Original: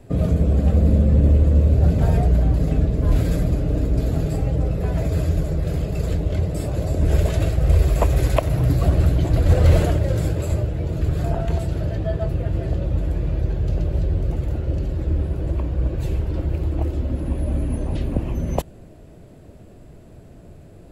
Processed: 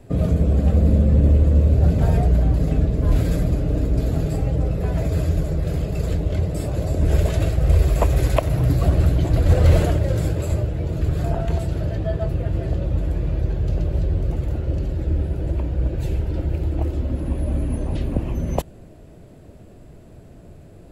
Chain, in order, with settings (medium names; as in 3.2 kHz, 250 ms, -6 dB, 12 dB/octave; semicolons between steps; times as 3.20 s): 14.93–16.81 s: band-stop 1.1 kHz, Q 8